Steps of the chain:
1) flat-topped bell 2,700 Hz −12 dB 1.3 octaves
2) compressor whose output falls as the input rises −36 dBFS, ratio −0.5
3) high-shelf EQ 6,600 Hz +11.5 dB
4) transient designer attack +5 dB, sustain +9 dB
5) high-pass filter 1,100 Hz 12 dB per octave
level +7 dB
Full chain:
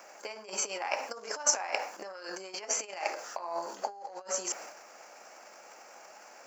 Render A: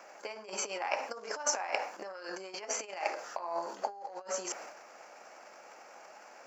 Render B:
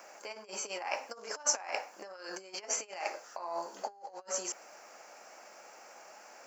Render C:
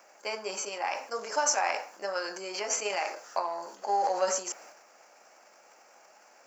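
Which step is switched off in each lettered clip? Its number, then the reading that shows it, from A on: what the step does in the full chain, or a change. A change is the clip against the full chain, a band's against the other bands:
3, 8 kHz band −5.5 dB
4, change in momentary loudness spread −2 LU
2, change in crest factor −6.5 dB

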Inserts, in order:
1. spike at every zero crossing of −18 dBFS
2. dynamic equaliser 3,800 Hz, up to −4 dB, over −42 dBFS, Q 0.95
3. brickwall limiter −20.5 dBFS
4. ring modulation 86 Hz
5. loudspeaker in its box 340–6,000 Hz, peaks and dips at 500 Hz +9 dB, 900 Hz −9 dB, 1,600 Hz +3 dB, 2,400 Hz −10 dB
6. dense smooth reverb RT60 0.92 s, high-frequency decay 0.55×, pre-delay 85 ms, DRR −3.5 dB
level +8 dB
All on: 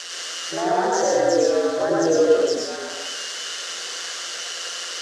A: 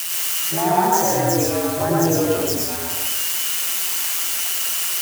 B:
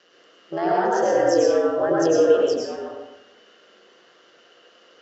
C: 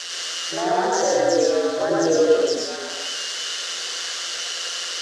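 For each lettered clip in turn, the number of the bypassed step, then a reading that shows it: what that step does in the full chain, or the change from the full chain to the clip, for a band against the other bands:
5, change in momentary loudness spread −7 LU
1, distortion level 0 dB
2, 4 kHz band +3.0 dB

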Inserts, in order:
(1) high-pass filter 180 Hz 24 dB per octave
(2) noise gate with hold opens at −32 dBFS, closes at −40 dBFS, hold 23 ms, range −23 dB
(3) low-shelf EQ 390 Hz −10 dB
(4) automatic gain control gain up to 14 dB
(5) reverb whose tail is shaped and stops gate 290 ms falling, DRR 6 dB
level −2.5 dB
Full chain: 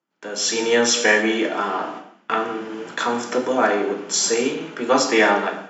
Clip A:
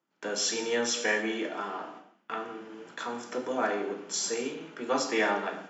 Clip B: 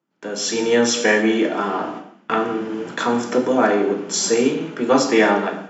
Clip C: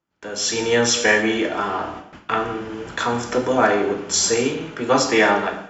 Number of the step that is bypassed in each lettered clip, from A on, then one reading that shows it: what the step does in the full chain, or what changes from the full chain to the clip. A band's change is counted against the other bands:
4, change in momentary loudness spread +1 LU
3, 125 Hz band +6.5 dB
1, 125 Hz band +8.0 dB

